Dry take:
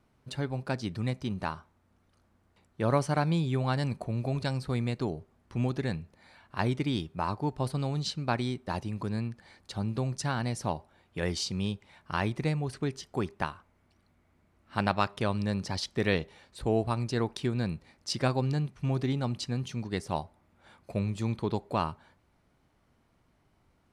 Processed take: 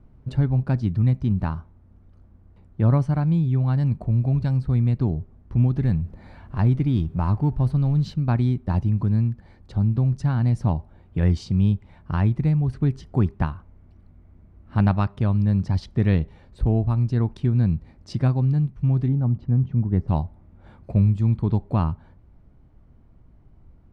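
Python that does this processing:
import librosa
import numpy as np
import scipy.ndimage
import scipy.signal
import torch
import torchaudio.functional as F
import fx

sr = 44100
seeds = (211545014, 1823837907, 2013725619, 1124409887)

y = fx.law_mismatch(x, sr, coded='mu', at=(5.76, 8.14))
y = fx.bessel_lowpass(y, sr, hz=1100.0, order=2, at=(19.08, 20.08))
y = fx.tilt_eq(y, sr, slope=-4.5)
y = fx.rider(y, sr, range_db=3, speed_s=0.5)
y = fx.dynamic_eq(y, sr, hz=460.0, q=1.2, threshold_db=-37.0, ratio=4.0, max_db=-7)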